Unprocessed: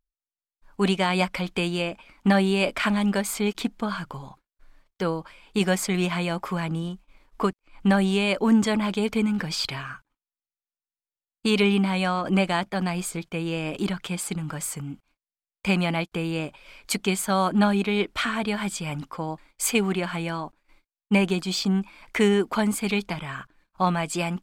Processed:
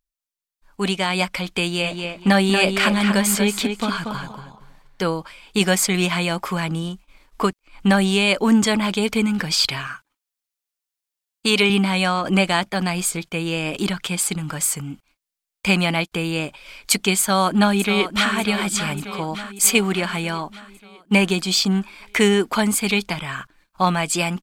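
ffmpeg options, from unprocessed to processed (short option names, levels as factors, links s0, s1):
-filter_complex "[0:a]asplit=3[s0][s1][s2];[s0]afade=t=out:st=1.83:d=0.02[s3];[s1]asplit=2[s4][s5];[s5]adelay=235,lowpass=f=4800:p=1,volume=0.531,asplit=2[s6][s7];[s7]adelay=235,lowpass=f=4800:p=1,volume=0.22,asplit=2[s8][s9];[s9]adelay=235,lowpass=f=4800:p=1,volume=0.22[s10];[s4][s6][s8][s10]amix=inputs=4:normalize=0,afade=t=in:st=1.83:d=0.02,afade=t=out:st=5.1:d=0.02[s11];[s2]afade=t=in:st=5.1:d=0.02[s12];[s3][s11][s12]amix=inputs=3:normalize=0,asettb=1/sr,asplit=3[s13][s14][s15];[s13]atrim=end=9.874[s16];[s14]atrim=start=9.87:end=11.7,asetpts=PTS-STARTPTS,afade=t=in:d=0.004:c=qsin,afade=t=out:st=1.826:d=0.004:c=qsin,lowshelf=f=140:g=-11.5[s17];[s15]atrim=start=11.696[s18];[s16][s17]acrossfade=d=0.004:c1=hsin:c2=qsin[s19];[s19][s18]acrossfade=d=0.004:c1=qsin:c2=hsin,asplit=2[s20][s21];[s21]afade=t=in:st=17.2:d=0.01,afade=t=out:st=18.33:d=0.01,aecho=0:1:590|1180|1770|2360|2950|3540|4130:0.316228|0.189737|0.113842|0.0683052|0.0409831|0.0245899|0.0147539[s22];[s20][s22]amix=inputs=2:normalize=0,dynaudnorm=f=100:g=31:m=1.78,highshelf=f=2100:g=7.5,volume=0.841"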